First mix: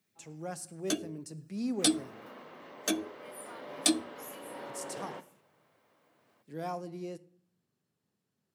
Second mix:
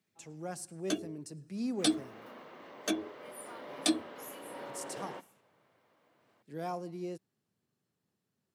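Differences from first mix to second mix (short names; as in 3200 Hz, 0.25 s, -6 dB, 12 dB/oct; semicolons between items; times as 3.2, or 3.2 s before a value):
first sound: add high shelf 6100 Hz -9.5 dB; reverb: off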